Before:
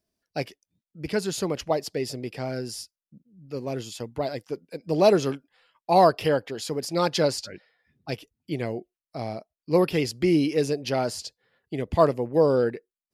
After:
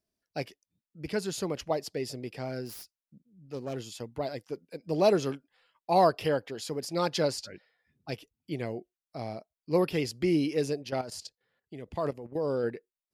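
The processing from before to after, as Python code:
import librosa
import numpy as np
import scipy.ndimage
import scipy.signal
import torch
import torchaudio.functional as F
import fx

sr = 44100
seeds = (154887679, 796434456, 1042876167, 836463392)

y = fx.self_delay(x, sr, depth_ms=0.14, at=(2.65, 3.77))
y = fx.level_steps(y, sr, step_db=12, at=(10.82, 12.63), fade=0.02)
y = F.gain(torch.from_numpy(y), -5.0).numpy()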